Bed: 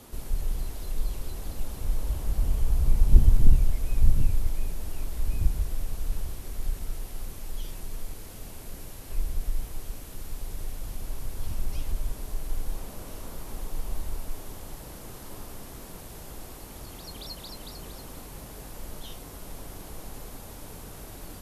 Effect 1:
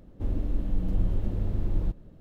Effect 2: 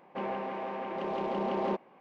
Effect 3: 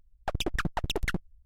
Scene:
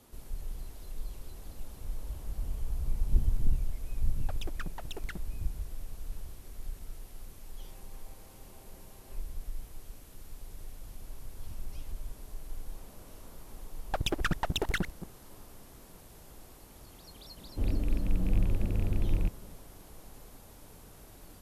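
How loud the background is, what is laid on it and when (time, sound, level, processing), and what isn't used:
bed -10 dB
4.01 s: add 3 -8.5 dB + peak limiter -22 dBFS
7.44 s: add 2 -13.5 dB + compression, threshold -46 dBFS
13.66 s: add 3 -0.5 dB + chunks repeated in reverse 126 ms, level -11 dB
17.37 s: add 1 -1 dB + rattle on loud lows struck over -24 dBFS, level -34 dBFS

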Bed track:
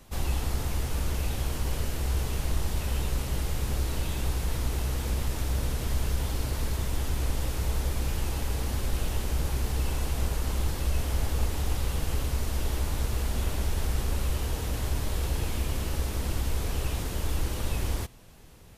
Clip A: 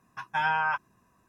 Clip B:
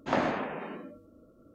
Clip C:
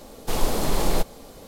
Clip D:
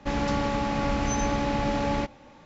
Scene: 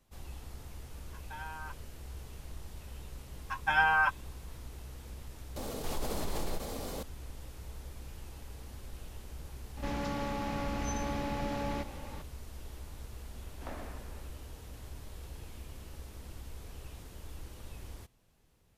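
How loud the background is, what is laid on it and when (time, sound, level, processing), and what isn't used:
bed track -17 dB
0.96 s: add A -18 dB
3.33 s: add A -0.5 dB + comb 3.8 ms, depth 55%
5.56 s: add C -17.5 dB + level flattener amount 70%
9.77 s: add D -10 dB + level flattener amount 50%
13.54 s: add B -17.5 dB

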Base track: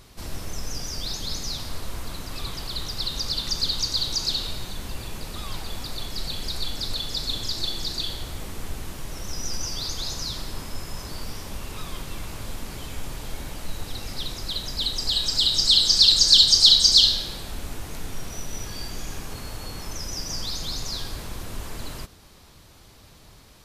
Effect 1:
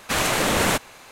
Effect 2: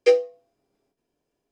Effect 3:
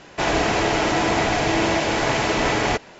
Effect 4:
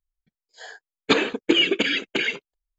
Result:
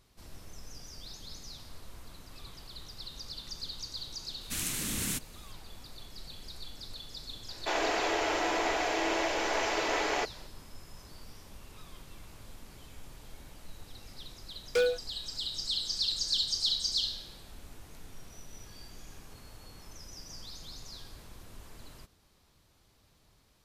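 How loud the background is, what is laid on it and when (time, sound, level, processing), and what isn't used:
base track -15.5 dB
4.41 s: add 1 -11.5 dB + FFT filter 260 Hz 0 dB, 620 Hz -20 dB, 2.3 kHz -5 dB, 10 kHz +7 dB
7.48 s: add 3 -9 dB + high-pass 330 Hz 24 dB/octave
14.69 s: add 2 -16.5 dB + waveshaping leveller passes 5
not used: 4

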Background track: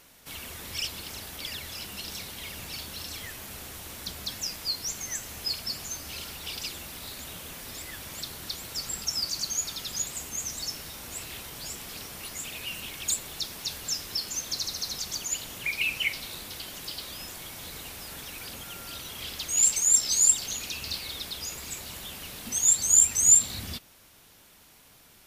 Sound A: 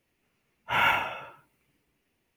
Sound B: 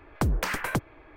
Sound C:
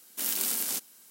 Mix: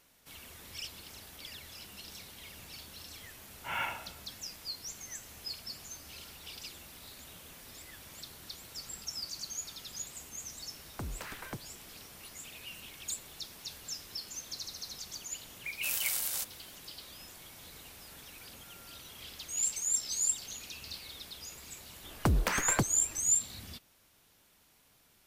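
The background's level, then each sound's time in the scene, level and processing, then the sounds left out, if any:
background track -10 dB
2.94 s: add A -13.5 dB + three bands expanded up and down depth 40%
10.78 s: add B -15 dB
15.65 s: add C -4 dB + steep high-pass 490 Hz 96 dB/octave
22.04 s: add B -2 dB

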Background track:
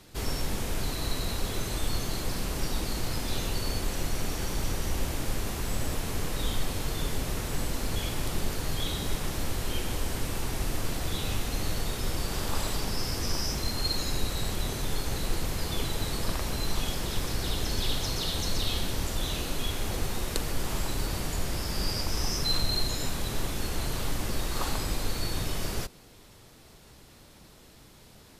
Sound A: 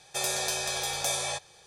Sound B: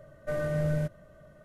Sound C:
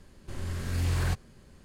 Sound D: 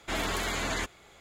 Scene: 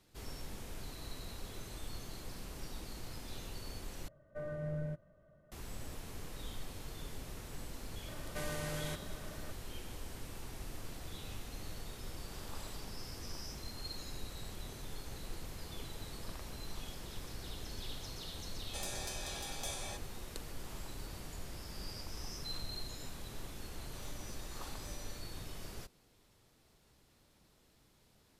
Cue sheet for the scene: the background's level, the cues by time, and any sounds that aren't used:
background track -15 dB
4.08 s: replace with B -10.5 dB + treble shelf 2.6 kHz -11 dB
8.08 s: add B -11 dB + spectrum-flattening compressor 2:1
18.59 s: add A -13.5 dB
23.78 s: add A -10 dB + chord resonator G3 fifth, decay 0.48 s
not used: C, D

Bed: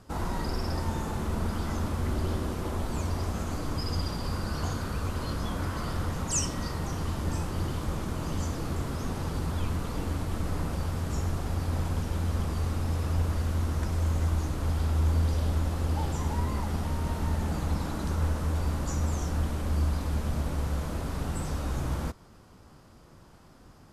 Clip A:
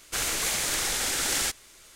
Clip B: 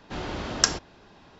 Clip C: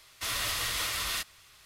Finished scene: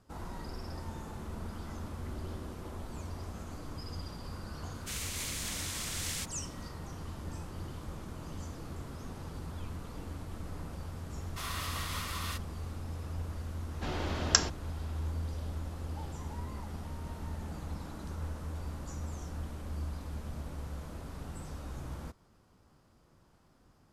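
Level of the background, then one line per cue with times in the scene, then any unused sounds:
bed -11 dB
4.74 s: add A -10 dB + Chebyshev high-pass 2.2 kHz
11.15 s: add C -9.5 dB + peaking EQ 1.1 kHz +9.5 dB 0.7 oct
13.71 s: add B -3.5 dB

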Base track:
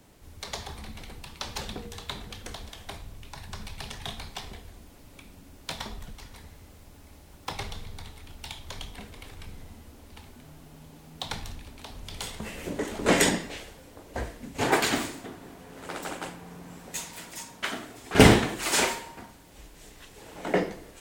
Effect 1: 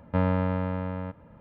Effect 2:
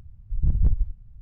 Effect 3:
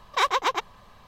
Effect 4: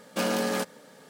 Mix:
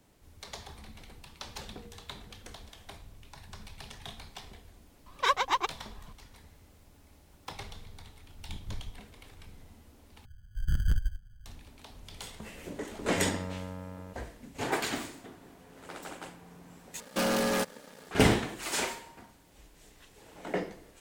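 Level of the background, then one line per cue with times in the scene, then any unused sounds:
base track -7.5 dB
5.06 s: add 3 + Shepard-style flanger rising 2 Hz
8.06 s: add 2 -18 dB + comb filter that takes the minimum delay 9.5 ms
10.25 s: replace with 2 -6.5 dB + sample-and-hold 28×
13.02 s: add 1 -11.5 dB
17.00 s: replace with 4 -7.5 dB + waveshaping leveller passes 3

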